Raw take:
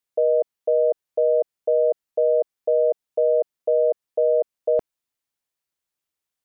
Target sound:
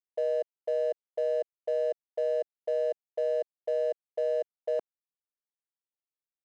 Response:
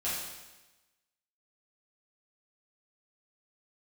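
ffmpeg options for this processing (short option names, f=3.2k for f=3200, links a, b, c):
-af "highpass=430,adynamicsmooth=sensitivity=7:basefreq=690,volume=-8dB"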